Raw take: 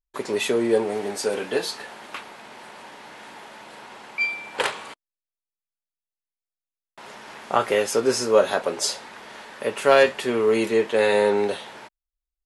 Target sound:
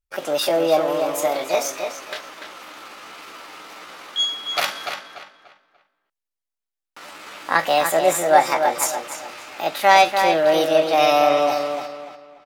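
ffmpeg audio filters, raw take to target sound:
ffmpeg -i in.wav -filter_complex "[0:a]asetrate=62367,aresample=44100,atempo=0.707107,asplit=2[link_01][link_02];[link_02]adelay=292,lowpass=frequency=4000:poles=1,volume=-6dB,asplit=2[link_03][link_04];[link_04]adelay=292,lowpass=frequency=4000:poles=1,volume=0.32,asplit=2[link_05][link_06];[link_06]adelay=292,lowpass=frequency=4000:poles=1,volume=0.32,asplit=2[link_07][link_08];[link_08]adelay=292,lowpass=frequency=4000:poles=1,volume=0.32[link_09];[link_01][link_03][link_05][link_07][link_09]amix=inputs=5:normalize=0,volume=2.5dB" out.wav

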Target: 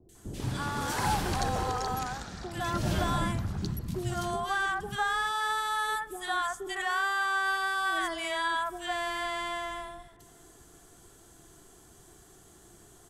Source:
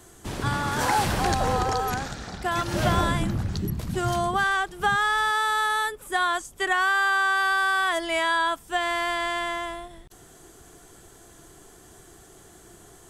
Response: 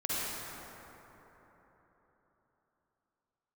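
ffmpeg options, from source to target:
-filter_complex "[0:a]acrossover=split=540|2000[link_01][link_02][link_03];[link_03]adelay=90[link_04];[link_02]adelay=150[link_05];[link_01][link_05][link_04]amix=inputs=3:normalize=0,asplit=2[link_06][link_07];[1:a]atrim=start_sample=2205,asetrate=61740,aresample=44100[link_08];[link_07][link_08]afir=irnorm=-1:irlink=0,volume=-25dB[link_09];[link_06][link_09]amix=inputs=2:normalize=0,volume=-5dB"

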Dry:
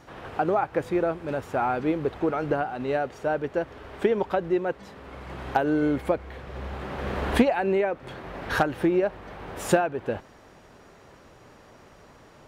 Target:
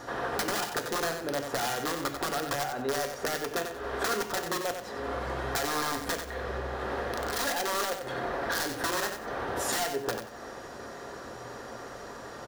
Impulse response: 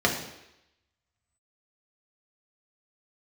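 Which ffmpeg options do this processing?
-filter_complex "[0:a]aeval=exprs='(mod(9.44*val(0)+1,2)-1)/9.44':channel_layout=same,acompressor=threshold=-38dB:ratio=12,lowshelf=frequency=290:gain=-7.5,aecho=1:1:92|184|276:0.422|0.105|0.0264,asplit=2[link_01][link_02];[1:a]atrim=start_sample=2205,atrim=end_sample=3528,highshelf=frequency=6500:gain=10[link_03];[link_02][link_03]afir=irnorm=-1:irlink=0,volume=-16.5dB[link_04];[link_01][link_04]amix=inputs=2:normalize=0,volume=7dB"

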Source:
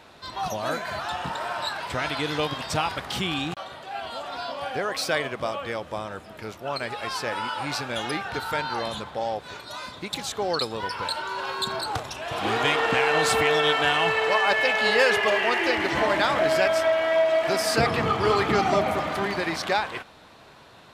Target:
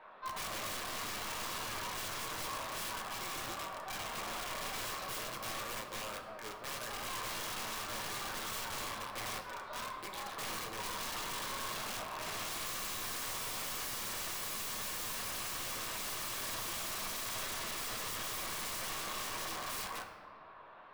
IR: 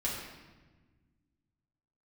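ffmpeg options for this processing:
-filter_complex "[0:a]highpass=730,lowpass=2300,aemphasis=mode=reproduction:type=riaa,asplit=2[link_01][link_02];[link_02]acompressor=threshold=-36dB:ratio=8,volume=0.5dB[link_03];[link_01][link_03]amix=inputs=2:normalize=0,flanger=delay=18:depth=7.9:speed=1.9,aeval=exprs='0.0631*(abs(mod(val(0)/0.0631+3,4)-2)-1)':channel_layout=same,aeval=exprs='0.112*(cos(1*acos(clip(val(0)/0.112,-1,1)))-cos(1*PI/2))+0.00891*(cos(2*acos(clip(val(0)/0.112,-1,1)))-cos(2*PI/2))+0.0251*(cos(3*acos(clip(val(0)/0.112,-1,1)))-cos(3*PI/2))+0.00251*(cos(4*acos(clip(val(0)/0.112,-1,1)))-cos(4*PI/2))+0.002*(cos(8*acos(clip(val(0)/0.112,-1,1)))-cos(8*PI/2))':channel_layout=same,aeval=exprs='(mod(89.1*val(0)+1,2)-1)/89.1':channel_layout=same,equalizer=frequency=1100:width_type=o:width=0.42:gain=6,asplit=2[link_04][link_05];[1:a]atrim=start_sample=2205[link_06];[link_05][link_06]afir=irnorm=-1:irlink=0,volume=-6dB[link_07];[link_04][link_07]amix=inputs=2:normalize=0"

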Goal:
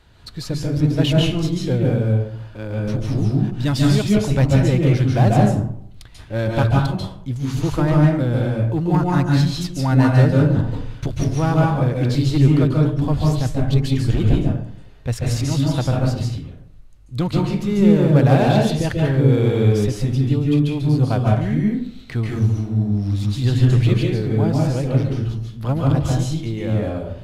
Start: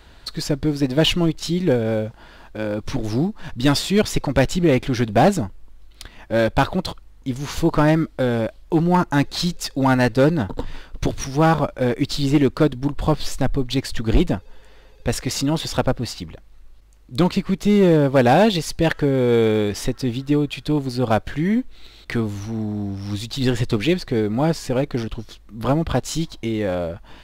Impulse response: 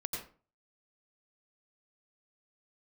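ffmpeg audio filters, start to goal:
-filter_complex "[0:a]equalizer=frequency=120:width=2.2:gain=13[link_01];[1:a]atrim=start_sample=2205,asetrate=26901,aresample=44100[link_02];[link_01][link_02]afir=irnorm=-1:irlink=0,volume=-7.5dB"

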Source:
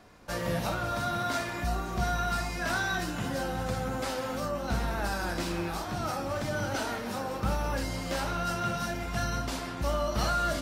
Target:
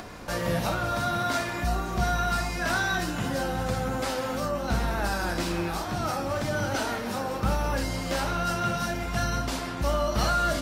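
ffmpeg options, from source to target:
ffmpeg -i in.wav -af "acompressor=mode=upward:threshold=-35dB:ratio=2.5,volume=3.5dB" out.wav

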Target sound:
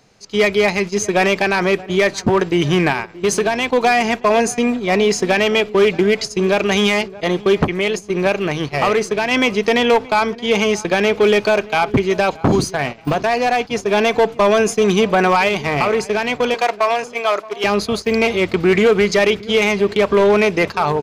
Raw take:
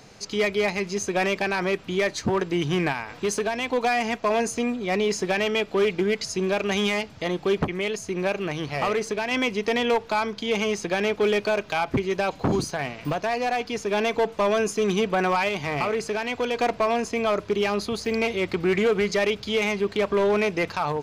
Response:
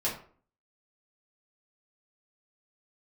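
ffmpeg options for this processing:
-filter_complex "[0:a]asettb=1/sr,asplit=3[link_01][link_02][link_03];[link_01]atrim=end=16.544[link_04];[link_02]atrim=start=16.54:end=17.64,asetpts=PTS-STARTPTS,afade=type=in:duration=0.004:curve=qsin,afade=type=out:start_time=1.096:duration=0.004:curve=qsin,highpass=610[link_05];[link_03]atrim=start=17.636[link_06];[link_04][link_05]acrossfade=duration=0.004:curve1=hsin:curve2=qsin[link_07];[link_07][link_06]acrossfade=duration=0.004:curve1=qsin:curve2=hsin,agate=range=-14dB:threshold=-30dB:ratio=16:detection=peak,asplit=2[link_08][link_09];[link_09]adelay=626,lowpass=frequency=1300:poles=1,volume=-18.5dB,asplit=2[link_10][link_11];[link_11]adelay=626,lowpass=frequency=1300:poles=1,volume=0.36,asplit=2[link_12][link_13];[link_13]adelay=626,lowpass=frequency=1300:poles=1,volume=0.36[link_14];[link_08][link_10][link_12][link_14]amix=inputs=4:normalize=0,volume=8.5dB"

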